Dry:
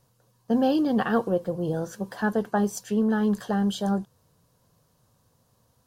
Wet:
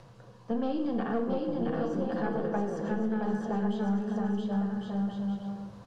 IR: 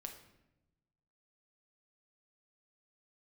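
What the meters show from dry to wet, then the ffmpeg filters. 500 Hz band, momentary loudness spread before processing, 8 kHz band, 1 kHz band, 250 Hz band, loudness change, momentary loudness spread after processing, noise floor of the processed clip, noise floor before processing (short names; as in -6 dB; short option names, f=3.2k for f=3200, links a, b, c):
-4.5 dB, 7 LU, under -15 dB, -5.0 dB, -4.0 dB, -5.5 dB, 3 LU, -53 dBFS, -67 dBFS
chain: -filter_complex "[0:a]asplit=2[a][b];[b]acompressor=mode=upward:threshold=-25dB:ratio=2.5,volume=1dB[c];[a][c]amix=inputs=2:normalize=0,aecho=1:1:670|1106|1389|1573|1692:0.631|0.398|0.251|0.158|0.1,aeval=exprs='(tanh(2*val(0)+0.6)-tanh(0.6))/2':c=same,bass=f=250:g=4,treble=f=4k:g=-10[d];[1:a]atrim=start_sample=2205[e];[d][e]afir=irnorm=-1:irlink=0,acrossover=split=180|1500|3800[f][g][h][i];[f]acompressor=threshold=-28dB:ratio=4[j];[g]acompressor=threshold=-25dB:ratio=4[k];[h]acompressor=threshold=-53dB:ratio=4[l];[i]acompressor=threshold=-54dB:ratio=4[m];[j][k][l][m]amix=inputs=4:normalize=0,lowpass=6.4k,lowshelf=f=150:g=-8,volume=-2.5dB"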